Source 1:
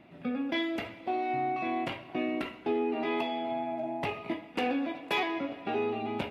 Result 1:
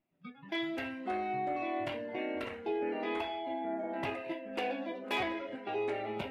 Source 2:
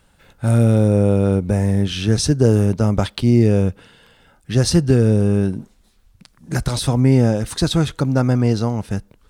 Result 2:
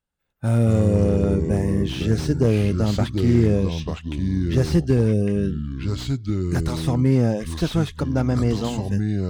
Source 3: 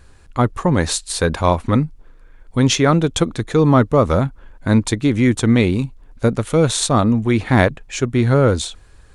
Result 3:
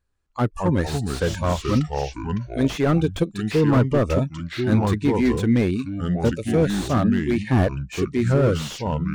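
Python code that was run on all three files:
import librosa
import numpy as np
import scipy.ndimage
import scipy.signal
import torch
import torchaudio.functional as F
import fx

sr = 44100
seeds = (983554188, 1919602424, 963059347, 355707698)

y = fx.noise_reduce_blind(x, sr, reduce_db=25)
y = fx.echo_pitch(y, sr, ms=116, semitones=-4, count=2, db_per_echo=-6.0)
y = fx.slew_limit(y, sr, full_power_hz=150.0)
y = F.gain(torch.from_numpy(y), -4.0).numpy()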